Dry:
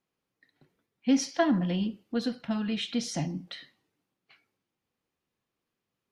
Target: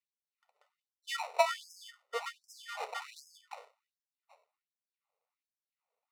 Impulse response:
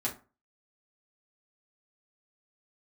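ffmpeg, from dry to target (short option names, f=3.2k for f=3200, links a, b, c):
-af "acrusher=samples=27:mix=1:aa=0.000001,aemphasis=mode=reproduction:type=50fm,afftfilt=real='re*gte(b*sr/1024,400*pow(5000/400,0.5+0.5*sin(2*PI*1.3*pts/sr)))':imag='im*gte(b*sr/1024,400*pow(5000/400,0.5+0.5*sin(2*PI*1.3*pts/sr)))':win_size=1024:overlap=0.75"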